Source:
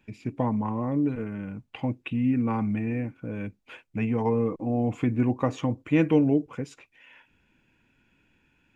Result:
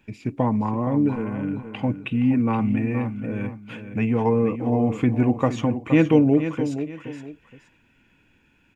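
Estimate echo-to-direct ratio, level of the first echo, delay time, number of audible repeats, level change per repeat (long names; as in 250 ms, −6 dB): −9.5 dB, −10.0 dB, 470 ms, 2, −10.5 dB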